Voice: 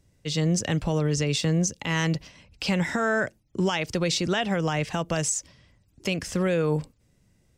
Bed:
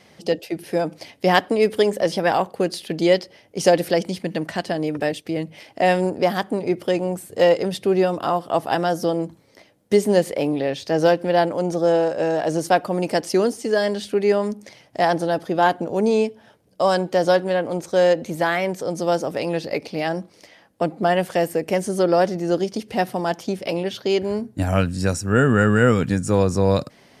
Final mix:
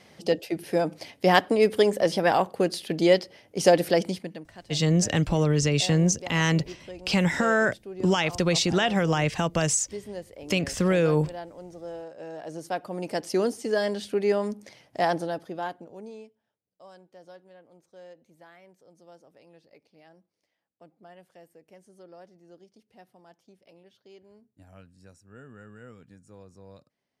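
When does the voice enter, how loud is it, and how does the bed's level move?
4.45 s, +2.0 dB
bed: 4.1 s -2.5 dB
4.49 s -20.5 dB
12.08 s -20.5 dB
13.43 s -5.5 dB
15.1 s -5.5 dB
16.51 s -31.5 dB

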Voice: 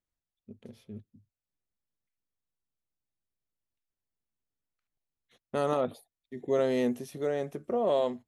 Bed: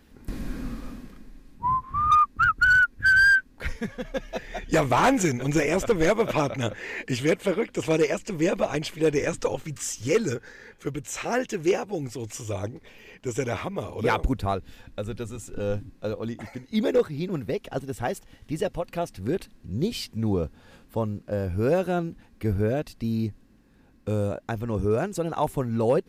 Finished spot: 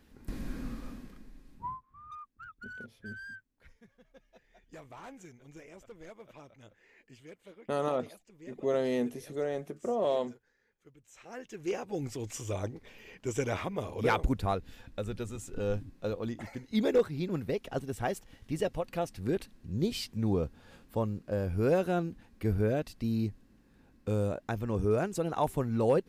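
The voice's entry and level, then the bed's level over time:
2.15 s, -2.5 dB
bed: 1.59 s -5.5 dB
1.85 s -28 dB
10.95 s -28 dB
12 s -4 dB

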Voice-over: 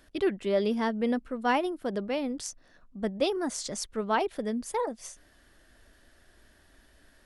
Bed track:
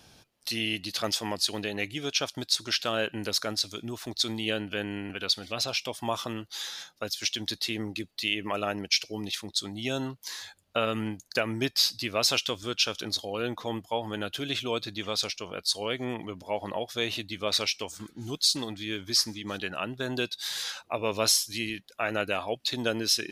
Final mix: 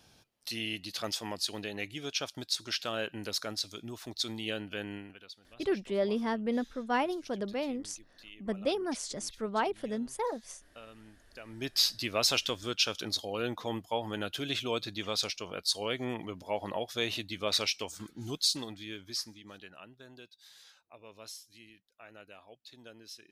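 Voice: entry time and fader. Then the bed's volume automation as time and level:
5.45 s, -3.5 dB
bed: 4.95 s -6 dB
5.31 s -23 dB
11.35 s -23 dB
11.76 s -2.5 dB
18.31 s -2.5 dB
20.29 s -23 dB

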